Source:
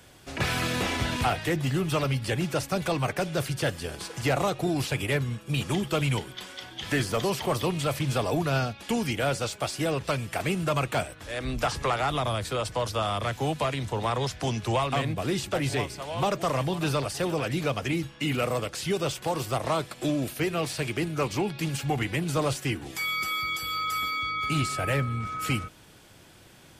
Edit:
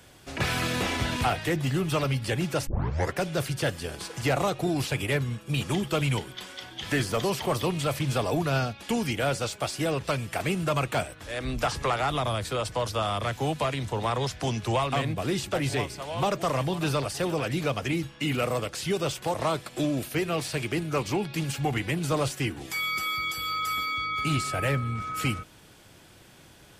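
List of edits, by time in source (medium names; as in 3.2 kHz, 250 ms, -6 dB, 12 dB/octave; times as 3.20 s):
2.67 s: tape start 0.50 s
19.34–19.59 s: delete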